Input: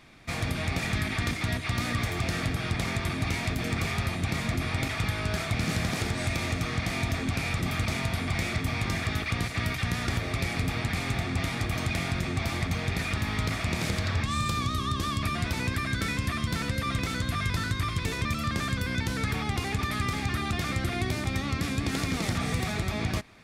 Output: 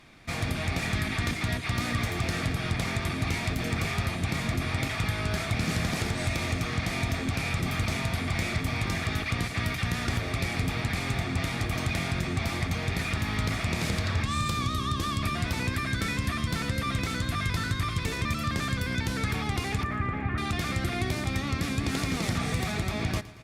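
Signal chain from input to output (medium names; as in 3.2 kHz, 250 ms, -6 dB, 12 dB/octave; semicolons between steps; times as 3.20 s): 19.83–20.38 s: low-pass 2.1 kHz 24 dB/octave; feedback delay 115 ms, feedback 56%, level -18 dB; Opus 64 kbps 48 kHz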